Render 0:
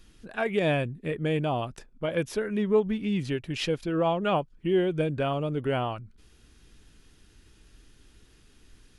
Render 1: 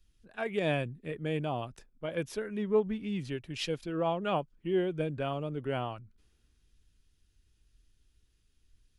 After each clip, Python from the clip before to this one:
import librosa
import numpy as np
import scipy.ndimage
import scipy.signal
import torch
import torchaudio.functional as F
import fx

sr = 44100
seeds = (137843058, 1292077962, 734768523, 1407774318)

y = fx.band_widen(x, sr, depth_pct=40)
y = y * librosa.db_to_amplitude(-6.0)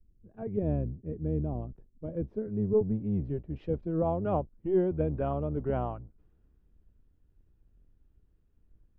y = fx.octave_divider(x, sr, octaves=1, level_db=-3.0)
y = fx.filter_sweep_lowpass(y, sr, from_hz=370.0, to_hz=950.0, start_s=2.05, end_s=5.25, q=0.76)
y = y * librosa.db_to_amplitude(3.0)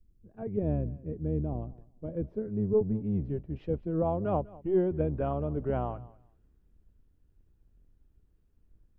y = fx.echo_feedback(x, sr, ms=199, feedback_pct=17, wet_db=-21)